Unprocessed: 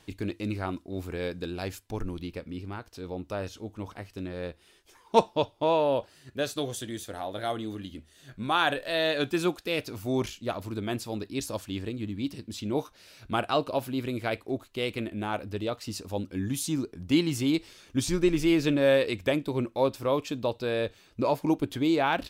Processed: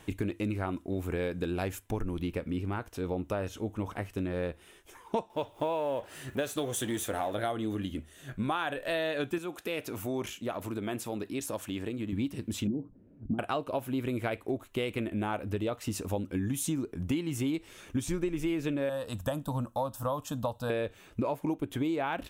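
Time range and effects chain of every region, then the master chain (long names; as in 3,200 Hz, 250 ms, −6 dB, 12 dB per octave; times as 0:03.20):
0:05.30–0:07.35: mu-law and A-law mismatch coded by mu + low-shelf EQ 230 Hz −5.5 dB + upward compression, threshold −43 dBFS
0:09.38–0:12.13: high-pass filter 200 Hz 6 dB per octave + downward compressor 2 to 1, threshold −40 dBFS
0:12.67–0:13.39: downward compressor 4 to 1, threshold −28 dBFS + low-pass with resonance 250 Hz, resonance Q 3 + mains-hum notches 60/120/180 Hz
0:18.89–0:20.70: high-shelf EQ 6,300 Hz +4.5 dB + phaser with its sweep stopped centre 920 Hz, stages 4
whole clip: parametric band 4,600 Hz −12.5 dB 0.62 octaves; downward compressor 10 to 1, threshold −34 dBFS; level +6 dB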